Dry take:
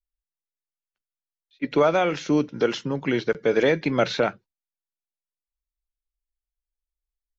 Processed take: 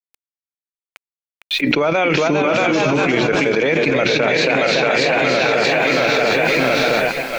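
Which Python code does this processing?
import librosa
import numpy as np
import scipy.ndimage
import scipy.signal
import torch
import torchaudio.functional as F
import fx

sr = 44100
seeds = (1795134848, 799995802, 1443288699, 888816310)

p1 = fx.fixed_phaser(x, sr, hz=1100.0, stages=4, at=(2.47, 2.92))
p2 = fx.echo_feedback(p1, sr, ms=678, feedback_pct=49, wet_db=-15.5)
p3 = fx.echo_pitch(p2, sr, ms=510, semitones=1, count=3, db_per_echo=-6.0)
p4 = fx.hum_notches(p3, sr, base_hz=60, count=6)
p5 = fx.level_steps(p4, sr, step_db=22)
p6 = p4 + (p5 * librosa.db_to_amplitude(1.0))
p7 = fx.echo_thinned(p6, sr, ms=629, feedback_pct=29, hz=590.0, wet_db=-7.0)
p8 = fx.quant_dither(p7, sr, seeds[0], bits=12, dither='none')
p9 = fx.peak_eq(p8, sr, hz=2400.0, db=8.0, octaves=0.39)
p10 = fx.env_flatten(p9, sr, amount_pct=100)
y = p10 * librosa.db_to_amplitude(-4.5)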